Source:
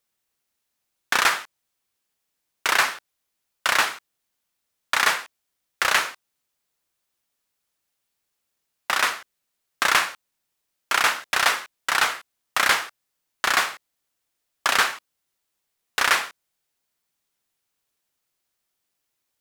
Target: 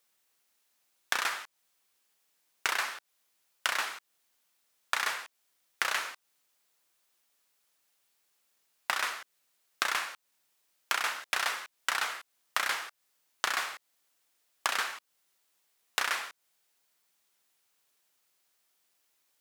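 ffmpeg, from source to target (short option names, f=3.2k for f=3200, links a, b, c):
-af "lowshelf=f=81:g=-9.5,acompressor=threshold=-32dB:ratio=8,lowshelf=f=290:g=-7.5,volume=4.5dB"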